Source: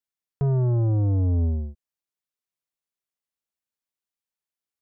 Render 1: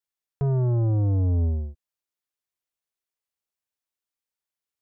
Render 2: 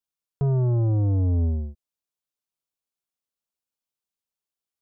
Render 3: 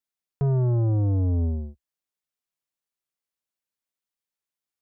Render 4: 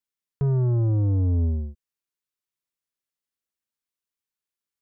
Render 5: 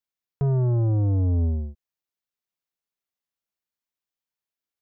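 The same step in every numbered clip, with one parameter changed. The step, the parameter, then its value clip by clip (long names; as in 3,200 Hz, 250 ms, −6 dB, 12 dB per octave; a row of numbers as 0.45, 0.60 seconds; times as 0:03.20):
parametric band, centre frequency: 200, 1,900, 62, 700, 9,100 Hertz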